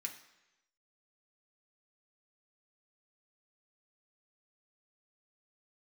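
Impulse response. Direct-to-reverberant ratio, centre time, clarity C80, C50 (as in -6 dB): 1.0 dB, 16 ms, 12.5 dB, 10.0 dB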